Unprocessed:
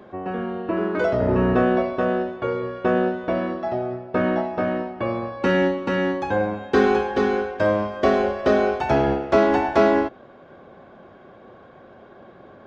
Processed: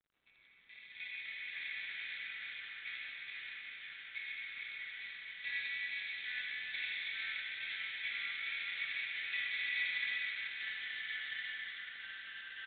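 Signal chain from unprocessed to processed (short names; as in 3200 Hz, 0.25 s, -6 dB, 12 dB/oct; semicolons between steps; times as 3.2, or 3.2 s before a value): Wiener smoothing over 25 samples; expander -36 dBFS; steep high-pass 2100 Hz 72 dB/oct; comb 4.1 ms, depth 44%; crackle 450/s -62 dBFS; fixed phaser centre 2900 Hz, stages 6; reverb RT60 6.3 s, pre-delay 48 ms, DRR -5 dB; echoes that change speed 0.134 s, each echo -2 st, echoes 3, each echo -6 dB; gain +2 dB; G.726 32 kbps 8000 Hz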